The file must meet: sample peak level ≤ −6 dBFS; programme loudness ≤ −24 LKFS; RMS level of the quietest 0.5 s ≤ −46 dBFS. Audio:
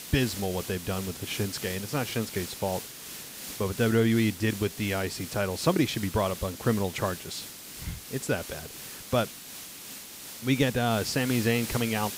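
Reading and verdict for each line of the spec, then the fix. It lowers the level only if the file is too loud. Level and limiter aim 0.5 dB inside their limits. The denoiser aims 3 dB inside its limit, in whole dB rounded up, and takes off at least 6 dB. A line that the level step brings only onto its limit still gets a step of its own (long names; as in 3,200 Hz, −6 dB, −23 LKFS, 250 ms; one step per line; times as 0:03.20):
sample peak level −9.5 dBFS: in spec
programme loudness −29.0 LKFS: in spec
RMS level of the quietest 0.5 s −43 dBFS: out of spec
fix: broadband denoise 6 dB, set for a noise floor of −43 dBFS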